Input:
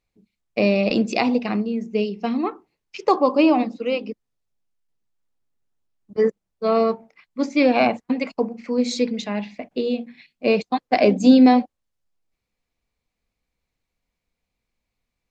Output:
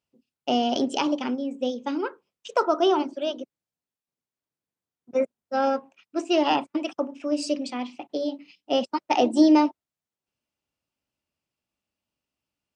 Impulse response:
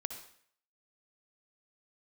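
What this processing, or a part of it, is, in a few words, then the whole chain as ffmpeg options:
nightcore: -af "highpass=90,asetrate=52920,aresample=44100,volume=-4.5dB"

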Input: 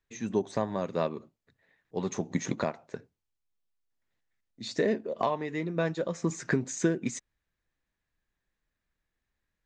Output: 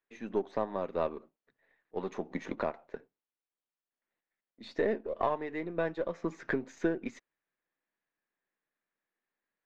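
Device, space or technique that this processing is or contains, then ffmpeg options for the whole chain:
crystal radio: -af "highpass=300,lowpass=3300,aeval=exprs='if(lt(val(0),0),0.708*val(0),val(0))':channel_layout=same,aemphasis=mode=reproduction:type=50kf"

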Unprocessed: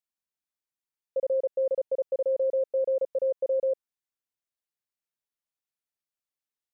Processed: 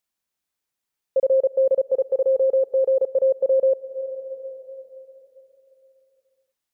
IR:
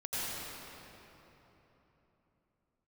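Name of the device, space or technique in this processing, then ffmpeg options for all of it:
ducked reverb: -filter_complex "[0:a]asettb=1/sr,asplit=3[link_01][link_02][link_03];[link_01]atrim=end=1.944[link_04];[link_02]atrim=start=1.94:end=3.06,asetpts=PTS-STARTPTS,afade=type=in:duration=0.004:curve=qsin,afade=type=out:start_time=1.116:duration=0.004:curve=qsin,aecho=1:1:2.5:0.51,atrim=end_sample=49392[link_05];[link_03]atrim=start=3.056[link_06];[link_04][link_05]acrossfade=duration=0.004:curve1=hsin:curve2=qsin[link_07];[link_07][link_06]acrossfade=duration=0.004:curve1=qsin:curve2=hsin,asplit=3[link_08][link_09][link_10];[1:a]atrim=start_sample=2205[link_11];[link_09][link_11]afir=irnorm=-1:irlink=0[link_12];[link_10]apad=whole_len=296905[link_13];[link_12][link_13]sidechaincompress=threshold=-41dB:ratio=4:attack=16:release=270,volume=-15dB[link_14];[link_08][link_14]amix=inputs=2:normalize=0,volume=8dB"

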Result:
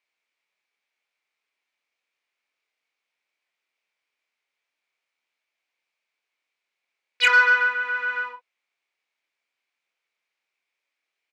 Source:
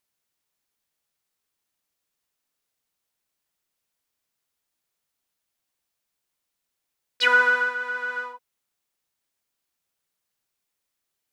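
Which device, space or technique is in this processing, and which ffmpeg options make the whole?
intercom: -filter_complex "[0:a]highpass=400,lowpass=4300,equalizer=frequency=2300:width_type=o:width=0.41:gain=12,asoftclip=type=tanh:threshold=-9.5dB,asplit=2[link_01][link_02];[link_02]adelay=25,volume=-6.5dB[link_03];[link_01][link_03]amix=inputs=2:normalize=0"

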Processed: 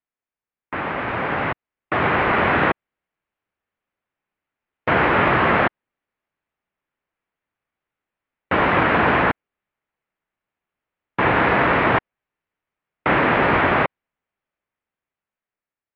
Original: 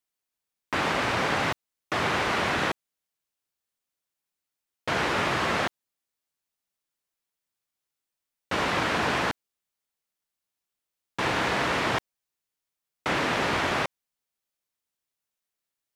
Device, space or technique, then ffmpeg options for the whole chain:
action camera in a waterproof case: -filter_complex "[0:a]asettb=1/sr,asplit=3[link_01][link_02][link_03];[link_01]atrim=end=9.244[link_04];[link_02]atrim=start=9.24:end=11.35,asetpts=PTS-STARTPTS,afade=type=in:duration=0.004:curve=qsin,afade=type=out:start_time=2.106:duration=0.004:curve=qsin,lowpass=5600[link_05];[link_03]atrim=start=11.346[link_06];[link_04][link_05]acrossfade=duration=0.004:curve1=hsin:curve2=qsin[link_07];[link_07][link_06]acrossfade=duration=0.004:curve1=qsin:curve2=hsin,lowpass=frequency=2400:width=0.5412,lowpass=frequency=2400:width=1.3066,dynaudnorm=framelen=510:gausssize=7:maxgain=10dB" -ar 24000 -c:a aac -b:a 48k

